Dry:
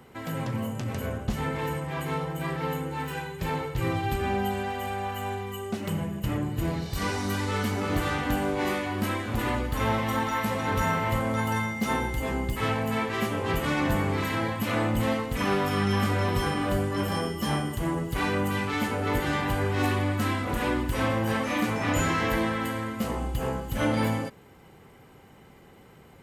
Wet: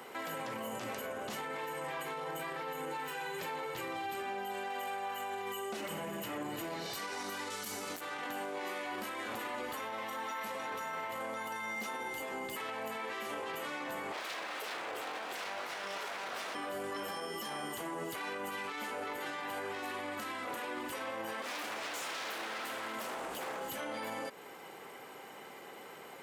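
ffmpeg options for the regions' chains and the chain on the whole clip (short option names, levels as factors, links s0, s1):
-filter_complex "[0:a]asettb=1/sr,asplit=3[s0][s1][s2];[s0]atrim=end=7.504[s3];[s1]atrim=start=7.5:end=8.01,asetpts=PTS-STARTPTS,afade=t=in:d=0.004:c=qsin,afade=t=out:st=0.506:d=0.004:c=qsin,bass=f=250:g=7,treble=f=4000:g=14,aeval=exprs='(mod(3.98*val(0)+1,2)-1)/3.98':c=same[s4];[s2]atrim=start=8.006[s5];[s3][s4]acrossfade=d=0.004:c1=hsin:c2=qsin[s6];[s6][s5]acrossfade=d=0.004:c1=qsin:c2=hsin,asettb=1/sr,asplit=3[s7][s8][s9];[s7]atrim=end=14.124[s10];[s8]atrim=start=14.12:end=16.55,asetpts=PTS-STARTPTS,afade=t=in:d=0.004:c=qsin,afade=t=out:st=2.426:d=0.004:c=qsin,highpass=f=170:w=0.5412,highpass=f=170:w=1.3066,highshelf=f=8000:g=-8.5,aeval=exprs='abs(val(0))':c=same[s11];[s9]atrim=start=16.546[s12];[s10][s11]acrossfade=d=0.004:c1=hsin:c2=qsin[s13];[s13][s12]acrossfade=d=0.004:c1=qsin:c2=hsin,asettb=1/sr,asplit=3[s14][s15][s16];[s14]atrim=end=21.424[s17];[s15]atrim=start=21.42:end=23.7,asetpts=PTS-STARTPTS,afade=t=in:d=0.004:c=qsin,afade=t=out:st=2.276:d=0.004:c=qsin,acompressor=threshold=0.0398:ratio=2:attack=3.2:release=140:knee=1:detection=peak,aeval=exprs='0.0299*(abs(mod(val(0)/0.0299+3,4)-2)-1)':c=same[s18];[s16]atrim=start=23.696[s19];[s17][s18]acrossfade=d=0.004:c1=hsin:c2=qsin[s20];[s20][s19]acrossfade=d=0.004:c1=qsin:c2=hsin,highpass=450,acompressor=threshold=0.01:ratio=6,alimiter=level_in=5.31:limit=0.0631:level=0:latency=1:release=26,volume=0.188,volume=2.24"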